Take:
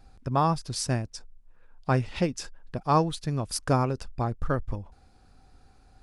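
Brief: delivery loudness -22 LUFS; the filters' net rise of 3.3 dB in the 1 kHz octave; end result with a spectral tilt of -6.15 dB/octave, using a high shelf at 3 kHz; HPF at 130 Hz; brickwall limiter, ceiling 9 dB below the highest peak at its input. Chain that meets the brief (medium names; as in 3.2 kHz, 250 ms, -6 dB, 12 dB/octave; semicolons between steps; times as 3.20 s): high-pass 130 Hz; peaking EQ 1 kHz +5 dB; treble shelf 3 kHz -8.5 dB; trim +9.5 dB; peak limiter -6.5 dBFS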